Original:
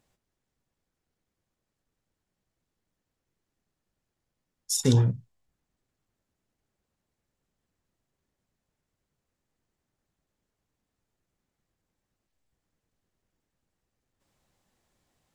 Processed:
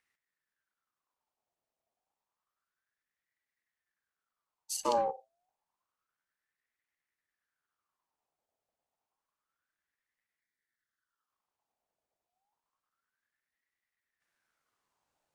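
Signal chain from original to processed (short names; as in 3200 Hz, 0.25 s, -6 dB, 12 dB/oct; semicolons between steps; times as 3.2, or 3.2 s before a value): spectral delete 10.41–11.3, 530–1400 Hz; ring modulator with a swept carrier 1300 Hz, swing 50%, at 0.29 Hz; gain -6 dB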